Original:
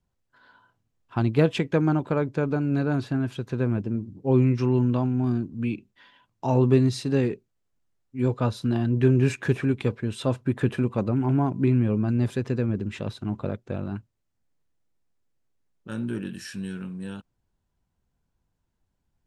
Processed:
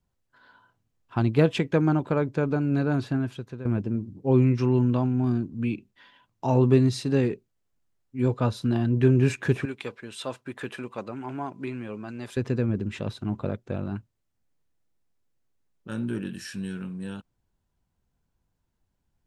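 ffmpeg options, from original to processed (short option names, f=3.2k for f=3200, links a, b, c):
-filter_complex "[0:a]asettb=1/sr,asplit=3[a][b][c];[a]atrim=end=9.654[d];[b]atrim=start=9.65:end=12.37,asetpts=PTS-STARTPTS,afade=t=in:d=0.004:c=qsin,afade=t=out:st=2.716:d=0.004:c=qsin,highpass=f=1k:p=1[e];[c]atrim=start=12.366[f];[d][e]acrossfade=d=0.004:c1=hsin:c2=qsin[g];[g][f]acrossfade=d=0.004:c1=qsin:c2=hsin,asplit=2[h][i];[h]atrim=end=3.65,asetpts=PTS-STARTPTS,afade=t=out:st=3.14:d=0.51:silence=0.188365[j];[i]atrim=start=3.65,asetpts=PTS-STARTPTS,afade=t=in:d=0.004:c=hsin:silence=0.188365[k];[j][k]concat=n=2:v=0:a=1"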